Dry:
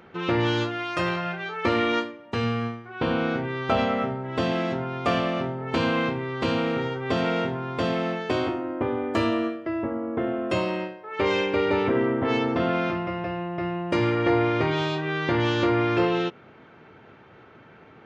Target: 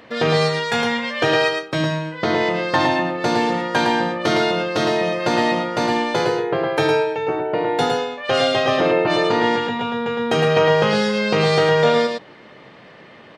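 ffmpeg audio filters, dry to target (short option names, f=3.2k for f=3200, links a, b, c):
-af "asetrate=59535,aresample=44100,aecho=1:1:110:0.596,volume=5dB"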